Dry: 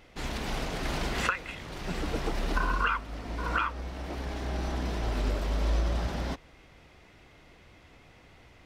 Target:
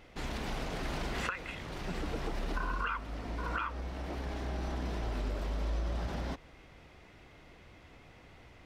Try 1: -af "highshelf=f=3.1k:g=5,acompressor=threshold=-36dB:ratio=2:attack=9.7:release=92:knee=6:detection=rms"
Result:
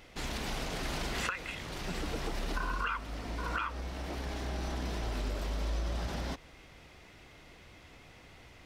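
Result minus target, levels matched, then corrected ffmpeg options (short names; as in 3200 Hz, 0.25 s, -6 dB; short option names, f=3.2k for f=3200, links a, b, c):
8000 Hz band +6.0 dB
-af "highshelf=f=3.1k:g=-3.5,acompressor=threshold=-36dB:ratio=2:attack=9.7:release=92:knee=6:detection=rms"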